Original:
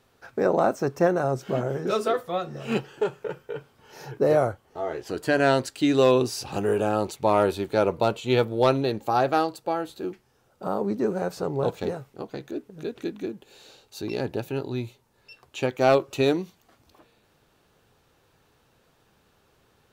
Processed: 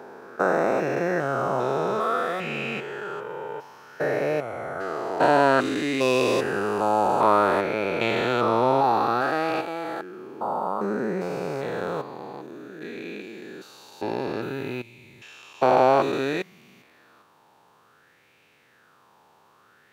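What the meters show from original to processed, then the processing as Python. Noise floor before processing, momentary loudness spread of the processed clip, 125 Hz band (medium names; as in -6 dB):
-65 dBFS, 18 LU, -4.0 dB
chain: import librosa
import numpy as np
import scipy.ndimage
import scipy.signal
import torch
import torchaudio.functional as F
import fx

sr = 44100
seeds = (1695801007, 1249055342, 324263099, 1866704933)

y = fx.spec_steps(x, sr, hold_ms=400)
y = scipy.signal.sosfilt(scipy.signal.butter(2, 150.0, 'highpass', fs=sr, output='sos'), y)
y = fx.bell_lfo(y, sr, hz=0.57, low_hz=890.0, high_hz=2400.0, db=15)
y = y * librosa.db_to_amplitude(2.0)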